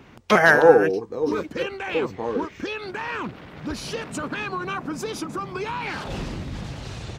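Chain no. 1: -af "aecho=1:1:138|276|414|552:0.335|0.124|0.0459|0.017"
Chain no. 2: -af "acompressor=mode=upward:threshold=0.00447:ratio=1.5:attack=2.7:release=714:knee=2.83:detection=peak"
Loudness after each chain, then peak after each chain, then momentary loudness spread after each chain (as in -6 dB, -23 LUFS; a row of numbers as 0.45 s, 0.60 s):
-23.0 LUFS, -23.5 LUFS; -1.5 dBFS, -1.5 dBFS; 18 LU, 18 LU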